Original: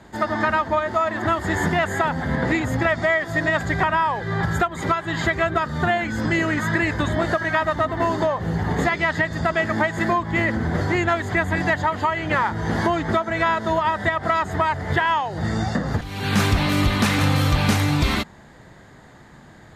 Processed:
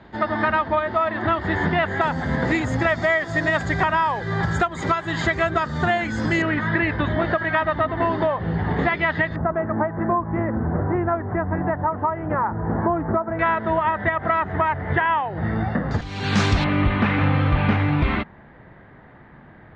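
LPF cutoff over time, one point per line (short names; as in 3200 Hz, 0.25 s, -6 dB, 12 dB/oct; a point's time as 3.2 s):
LPF 24 dB/oct
4000 Hz
from 2.01 s 7400 Hz
from 6.42 s 3500 Hz
from 9.36 s 1300 Hz
from 13.39 s 2600 Hz
from 15.91 s 6700 Hz
from 16.64 s 2600 Hz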